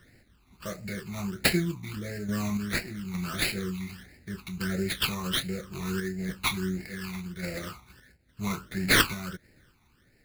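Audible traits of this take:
aliases and images of a low sample rate 6,900 Hz, jitter 20%
phaser sweep stages 12, 1.5 Hz, lowest notch 520–1,100 Hz
sample-and-hold tremolo

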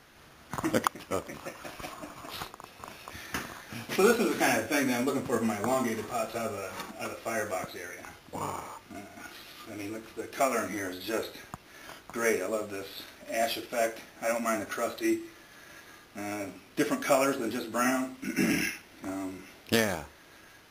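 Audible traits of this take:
background noise floor −55 dBFS
spectral slope −4.0 dB per octave

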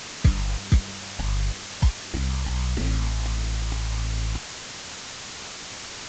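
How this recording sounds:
aliases and images of a low sample rate 1,100 Hz, jitter 0%
phaser sweep stages 12, 1.5 Hz, lowest notch 390–1,100 Hz
a quantiser's noise floor 6 bits, dither triangular
mu-law

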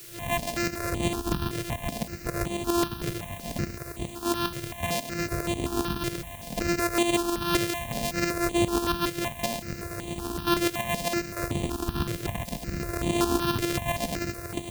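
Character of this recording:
a buzz of ramps at a fixed pitch in blocks of 128 samples
tremolo saw up 7.4 Hz, depth 65%
a quantiser's noise floor 8 bits, dither triangular
notches that jump at a steady rate 5.3 Hz 230–5,200 Hz

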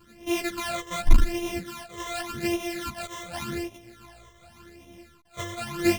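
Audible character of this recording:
a buzz of ramps at a fixed pitch in blocks of 128 samples
phaser sweep stages 12, 0.87 Hz, lowest notch 250–1,500 Hz
sample-and-hold tremolo
a shimmering, thickened sound

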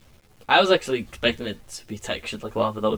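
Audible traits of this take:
tremolo triangle 3.2 Hz, depth 45%
a quantiser's noise floor 10 bits, dither none
a shimmering, thickened sound

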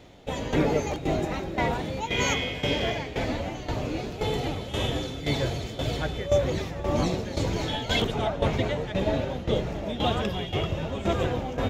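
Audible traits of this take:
tremolo saw down 1.9 Hz, depth 75%

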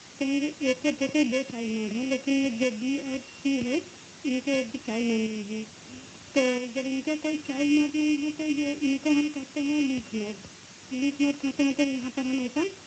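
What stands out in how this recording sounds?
a buzz of ramps at a fixed pitch in blocks of 16 samples
tremolo saw up 0.76 Hz, depth 50%
a quantiser's noise floor 8 bits, dither triangular
Speex

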